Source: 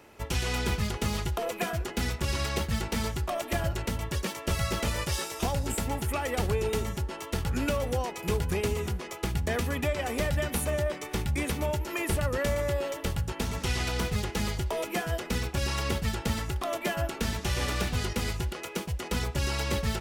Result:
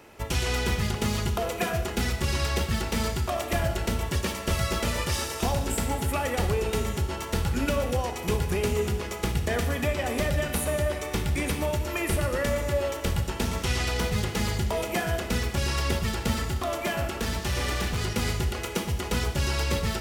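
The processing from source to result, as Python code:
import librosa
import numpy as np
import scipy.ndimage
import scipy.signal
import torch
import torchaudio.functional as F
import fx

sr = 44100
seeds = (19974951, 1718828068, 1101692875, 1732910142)

p1 = fx.rider(x, sr, range_db=10, speed_s=0.5)
p2 = x + F.gain(torch.from_numpy(p1), 0.0).numpy()
p3 = fx.clip_hard(p2, sr, threshold_db=-19.5, at=(16.36, 18.09))
p4 = fx.rev_schroeder(p3, sr, rt60_s=1.3, comb_ms=26, drr_db=6.5)
y = F.gain(torch.from_numpy(p4), -4.0).numpy()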